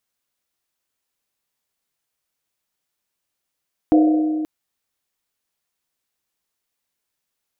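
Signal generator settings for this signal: Risset drum length 0.53 s, pitch 310 Hz, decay 2.83 s, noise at 510 Hz, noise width 180 Hz, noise 10%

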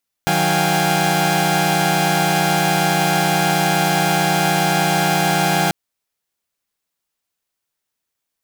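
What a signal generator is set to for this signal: chord D#3/F#3/F5/G5/G#5 saw, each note -19 dBFS 5.44 s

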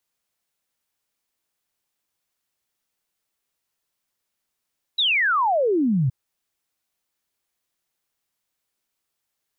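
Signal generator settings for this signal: log sweep 4 kHz -> 120 Hz 1.12 s -17 dBFS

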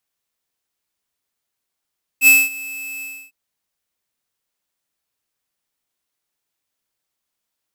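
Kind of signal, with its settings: ADSR square 2.61 kHz, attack 62 ms, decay 218 ms, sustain -22 dB, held 0.81 s, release 292 ms -8 dBFS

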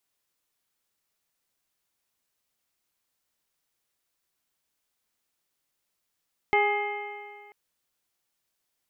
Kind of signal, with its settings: stretched partials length 0.99 s, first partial 410 Hz, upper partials 2/-9.5/-17/1.5/-18/-17 dB, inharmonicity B 0.0026, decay 1.91 s, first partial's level -23.5 dB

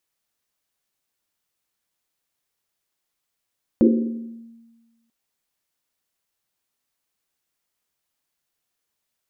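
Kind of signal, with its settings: Risset drum length 1.29 s, pitch 230 Hz, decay 1.40 s, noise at 340 Hz, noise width 140 Hz, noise 35%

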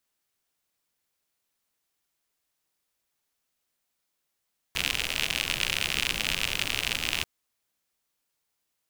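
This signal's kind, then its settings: rain from filtered ticks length 2.49 s, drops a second 76, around 2.7 kHz, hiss -8 dB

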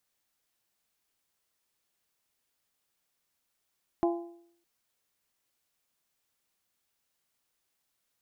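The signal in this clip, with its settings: metal hit bell, length 0.61 s, lowest mode 342 Hz, modes 4, decay 0.66 s, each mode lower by 5 dB, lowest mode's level -22 dB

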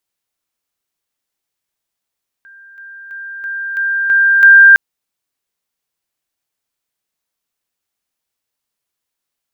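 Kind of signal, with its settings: level ladder 1.59 kHz -37.5 dBFS, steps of 6 dB, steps 7, 0.33 s 0.00 s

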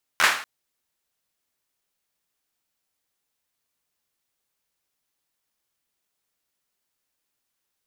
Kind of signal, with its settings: hand clap length 0.24 s, apart 12 ms, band 1.5 kHz, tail 0.47 s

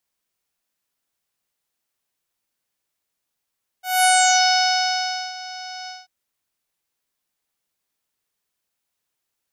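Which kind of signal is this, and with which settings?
synth note saw F#5 24 dB/octave, low-pass 5.4 kHz, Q 6.4, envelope 1.5 oct, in 0.58 s, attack 210 ms, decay 1.29 s, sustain -20 dB, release 0.19 s, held 2.05 s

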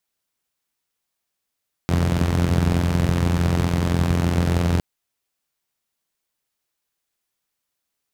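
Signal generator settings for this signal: four-cylinder engine model, steady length 2.91 s, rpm 2600, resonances 81/130 Hz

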